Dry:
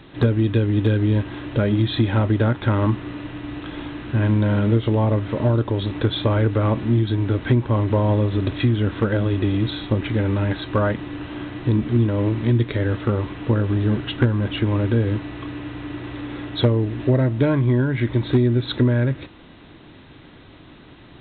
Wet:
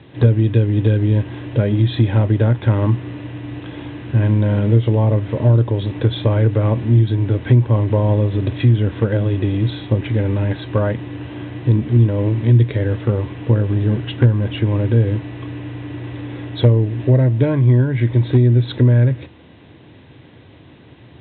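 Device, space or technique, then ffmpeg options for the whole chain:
guitar cabinet: -af "highpass=76,equalizer=f=81:t=q:w=4:g=7,equalizer=f=120:t=q:w=4:g=8,equalizer=f=490:t=q:w=4:g=4,equalizer=f=1.3k:t=q:w=4:g=-7,lowpass=f=3.7k:w=0.5412,lowpass=f=3.7k:w=1.3066"

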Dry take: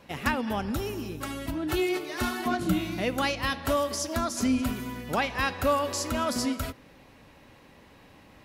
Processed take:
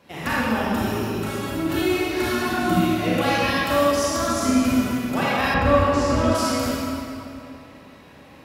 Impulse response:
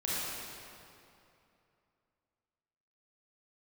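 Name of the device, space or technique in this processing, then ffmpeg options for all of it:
stairwell: -filter_complex "[1:a]atrim=start_sample=2205[a];[0:a][a]afir=irnorm=-1:irlink=0,highpass=78,asettb=1/sr,asplit=3[b][c][d];[b]atrim=end=5.544[e];[c]atrim=start=5.54:end=6.35,asetpts=PTS-STARTPTS,afade=t=in:d=0.004:c=qsin,afade=t=out:st=0.806:d=0.004:c=qsin,aemphasis=mode=reproduction:type=bsi[f];[d]atrim=start=6.346[g];[e][f]acrossfade=d=0.004:c1=hsin:c2=qsin[h];[h][g]acrossfade=d=0.004:c1=qsin:c2=hsin"

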